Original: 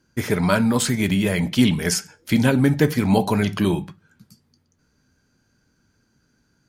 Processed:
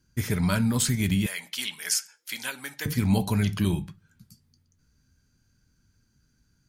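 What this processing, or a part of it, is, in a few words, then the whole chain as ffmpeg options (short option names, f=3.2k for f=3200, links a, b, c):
smiley-face EQ: -filter_complex "[0:a]lowshelf=f=100:g=7.5,lowshelf=f=190:g=4,equalizer=f=550:t=o:w=2.6:g=-7.5,highshelf=f=6.1k:g=6,asettb=1/sr,asplit=3[a][b][c];[a]atrim=end=1.264[d];[b]atrim=start=1.26:end=2.86,asetpts=PTS-STARTPTS,afade=t=in:d=0.004:c=qsin,afade=t=out:st=1.596:d=0.004:c=qsin,highpass=940[e];[c]atrim=start=2.856[f];[d][e]acrossfade=d=0.004:c1=hsin:c2=qsin[g];[g][f]acrossfade=d=0.004:c1=qsin:c2=hsin,volume=-5dB"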